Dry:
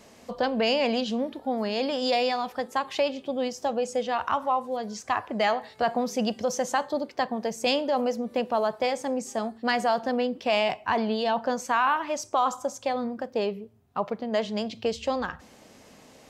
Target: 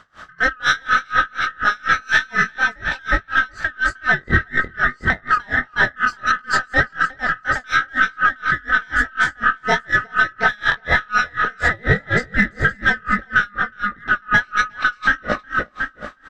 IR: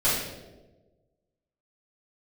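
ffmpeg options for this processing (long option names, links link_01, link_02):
-filter_complex "[0:a]afftfilt=real='real(if(lt(b,960),b+48*(1-2*mod(floor(b/48),2)),b),0)':imag='imag(if(lt(b,960),b+48*(1-2*mod(floor(b/48),2)),b),0)':win_size=2048:overlap=0.75,aemphasis=mode=reproduction:type=75kf,asplit=2[link_01][link_02];[link_02]adynamicsmooth=sensitivity=7.5:basefreq=7800,volume=0.5dB[link_03];[link_01][link_03]amix=inputs=2:normalize=0,flanger=delay=17.5:depth=7.7:speed=1.7,aeval=exprs='0.376*(cos(1*acos(clip(val(0)/0.376,-1,1)))-cos(1*PI/2))+0.0211*(cos(2*acos(clip(val(0)/0.376,-1,1)))-cos(2*PI/2))+0.0106*(cos(6*acos(clip(val(0)/0.376,-1,1)))-cos(6*PI/2))':channel_layout=same,asplit=2[link_04][link_05];[link_05]adelay=364,lowpass=frequency=4700:poles=1,volume=-6dB,asplit=2[link_06][link_07];[link_07]adelay=364,lowpass=frequency=4700:poles=1,volume=0.52,asplit=2[link_08][link_09];[link_09]adelay=364,lowpass=frequency=4700:poles=1,volume=0.52,asplit=2[link_10][link_11];[link_11]adelay=364,lowpass=frequency=4700:poles=1,volume=0.52,asplit=2[link_12][link_13];[link_13]adelay=364,lowpass=frequency=4700:poles=1,volume=0.52,asplit=2[link_14][link_15];[link_15]adelay=364,lowpass=frequency=4700:poles=1,volume=0.52[link_16];[link_06][link_08][link_10][link_12][link_14][link_16]amix=inputs=6:normalize=0[link_17];[link_04][link_17]amix=inputs=2:normalize=0,alimiter=level_in=18dB:limit=-1dB:release=50:level=0:latency=1,aeval=exprs='val(0)*pow(10,-32*(0.5-0.5*cos(2*PI*4.1*n/s))/20)':channel_layout=same,volume=-2.5dB"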